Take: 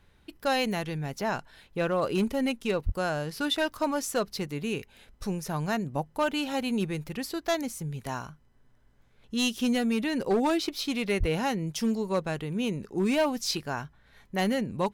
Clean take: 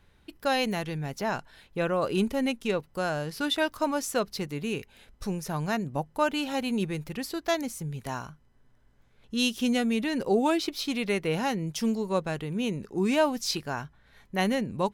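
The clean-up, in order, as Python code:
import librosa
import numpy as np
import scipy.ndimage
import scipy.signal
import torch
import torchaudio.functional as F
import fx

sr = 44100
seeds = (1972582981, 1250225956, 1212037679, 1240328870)

y = fx.fix_declip(x, sr, threshold_db=-19.5)
y = fx.highpass(y, sr, hz=140.0, slope=24, at=(2.85, 2.97), fade=0.02)
y = fx.highpass(y, sr, hz=140.0, slope=24, at=(11.19, 11.31), fade=0.02)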